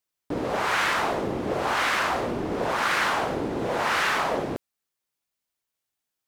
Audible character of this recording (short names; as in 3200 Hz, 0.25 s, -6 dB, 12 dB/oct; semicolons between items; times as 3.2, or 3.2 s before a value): noise floor -85 dBFS; spectral tilt -3.5 dB/oct